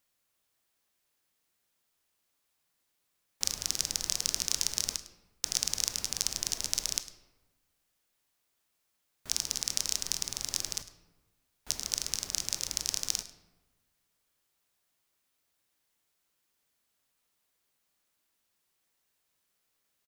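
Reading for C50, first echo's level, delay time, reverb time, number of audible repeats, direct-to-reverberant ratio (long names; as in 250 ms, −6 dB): 11.0 dB, −17.0 dB, 104 ms, 1.2 s, 1, 9.5 dB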